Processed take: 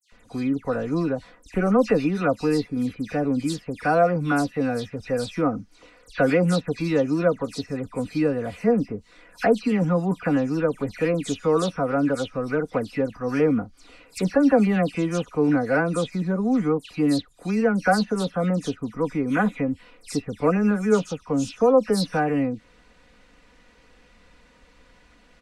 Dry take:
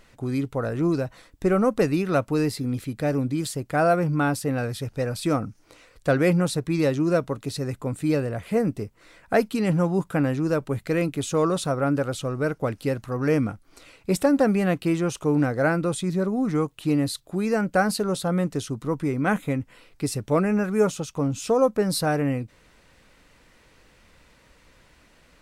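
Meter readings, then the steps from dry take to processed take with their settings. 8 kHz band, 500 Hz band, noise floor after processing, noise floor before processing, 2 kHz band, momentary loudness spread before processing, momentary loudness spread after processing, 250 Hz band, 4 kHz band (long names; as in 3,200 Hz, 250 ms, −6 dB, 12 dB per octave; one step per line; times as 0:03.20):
−4.5 dB, +1.5 dB, −56 dBFS, −58 dBFS, +1.0 dB, 8 LU, 9 LU, +1.5 dB, −0.5 dB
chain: high-frequency loss of the air 51 metres
comb filter 4.1 ms, depth 52%
all-pass dispersion lows, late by 124 ms, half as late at 2,900 Hz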